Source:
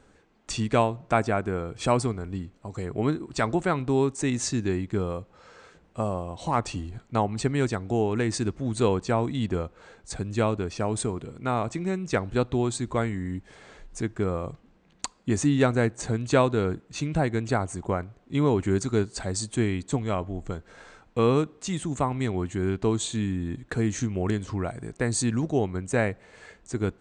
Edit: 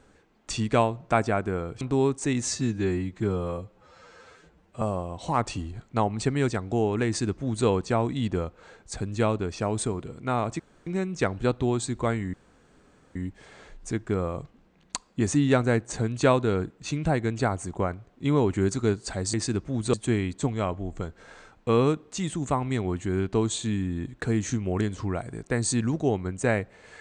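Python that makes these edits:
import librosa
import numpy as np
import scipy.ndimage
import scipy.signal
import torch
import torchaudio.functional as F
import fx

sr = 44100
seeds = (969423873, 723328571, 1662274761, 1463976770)

y = fx.edit(x, sr, fx.cut(start_s=1.81, length_s=1.97),
    fx.stretch_span(start_s=4.43, length_s=1.57, factor=1.5),
    fx.duplicate(start_s=8.25, length_s=0.6, to_s=19.43),
    fx.insert_room_tone(at_s=11.78, length_s=0.27),
    fx.insert_room_tone(at_s=13.25, length_s=0.82), tone=tone)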